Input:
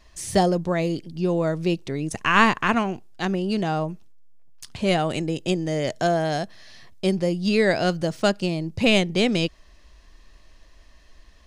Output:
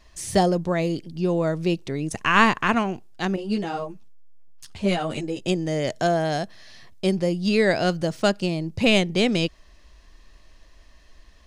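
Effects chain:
0:03.36–0:05.45: string-ensemble chorus

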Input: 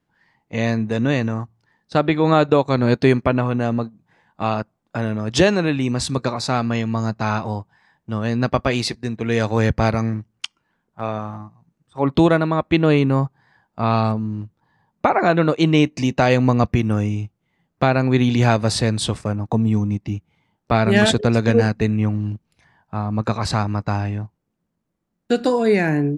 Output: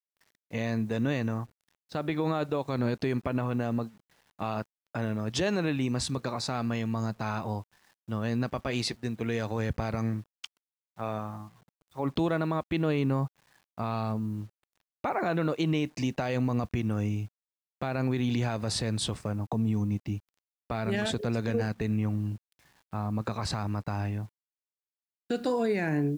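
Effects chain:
brickwall limiter −12 dBFS, peak gain reduction 10.5 dB
bit reduction 9 bits
level −7.5 dB

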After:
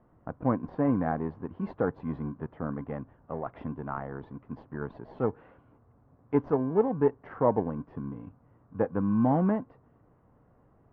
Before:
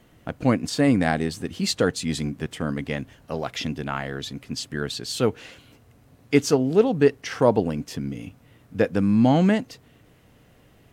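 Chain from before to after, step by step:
in parallel at −11.5 dB: decimation without filtering 34×
on the sum: transistor ladder low-pass 1,300 Hz, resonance 45%

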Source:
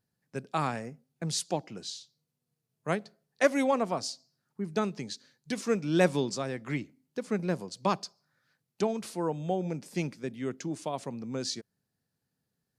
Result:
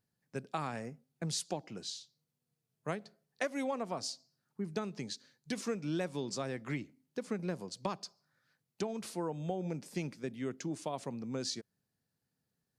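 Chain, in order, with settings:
downward compressor 10 to 1, threshold −29 dBFS, peak gain reduction 12.5 dB
level −2.5 dB

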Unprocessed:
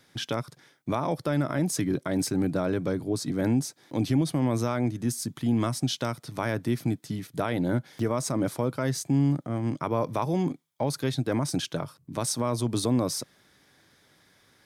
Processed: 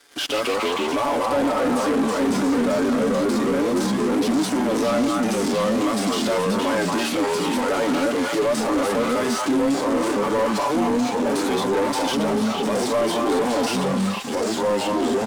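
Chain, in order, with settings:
variable-slope delta modulation 64 kbit/s
in parallel at −4.5 dB: sine wavefolder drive 5 dB, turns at −15 dBFS
on the sum: high-pass filter 320 Hz 24 dB per octave
comb filter 6.7 ms, depth 76%
de-essing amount 55%
delay with pitch and tempo change per echo 107 ms, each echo −2 semitones, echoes 3
on a send: echo through a band-pass that steps 224 ms, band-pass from 1,100 Hz, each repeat 1.4 octaves, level −3.5 dB
on the sum: wrong playback speed 25 fps video run at 24 fps
leveller curve on the samples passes 2
brickwall limiter −15 dBFS, peak gain reduction 10 dB
leveller curve on the samples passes 1
harmonic and percussive parts rebalanced harmonic +6 dB
level −5.5 dB

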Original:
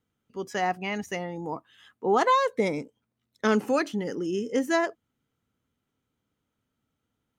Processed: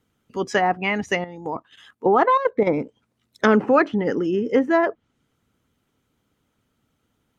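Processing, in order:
treble cut that deepens with the level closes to 1,600 Hz, closed at −24.5 dBFS
harmonic and percussive parts rebalanced percussive +6 dB
0:01.24–0:02.67: output level in coarse steps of 11 dB
level +6.5 dB

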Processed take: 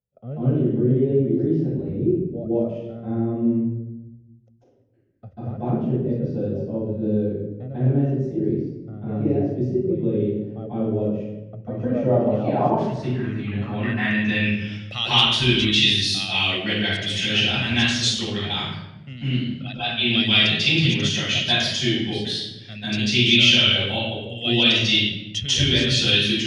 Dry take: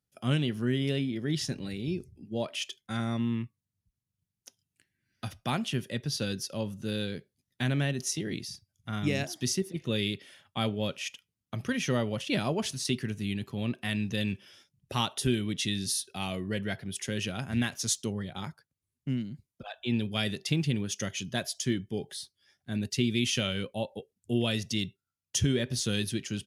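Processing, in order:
parametric band 7,500 Hz +12.5 dB 2.8 octaves
in parallel at −2 dB: downward compressor, threshold −34 dBFS, peak gain reduction 19.5 dB
on the sum: low-pass filter sweep 450 Hz → 3,200 Hz, 0:11.39–0:15.02
convolution reverb RT60 0.95 s, pre-delay 138 ms, DRR −12 dB
level −11 dB

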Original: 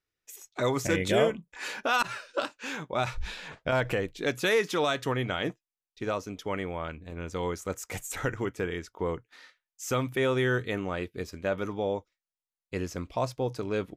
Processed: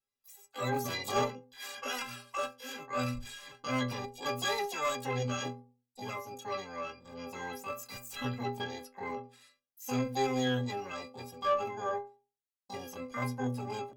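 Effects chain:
stiff-string resonator 120 Hz, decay 0.48 s, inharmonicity 0.03
pitch-shifted copies added +12 semitones 0 dB
tube saturation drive 24 dB, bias 0.25
level +4 dB

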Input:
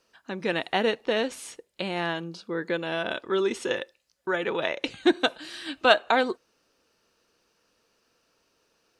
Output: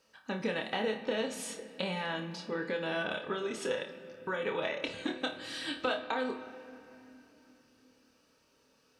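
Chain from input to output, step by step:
downward compressor 6 to 1, threshold −30 dBFS, peak gain reduction 16.5 dB
notch comb filter 350 Hz
flutter between parallel walls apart 4.7 metres, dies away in 0.25 s
on a send at −10.5 dB: convolution reverb RT60 3.3 s, pre-delay 4 ms

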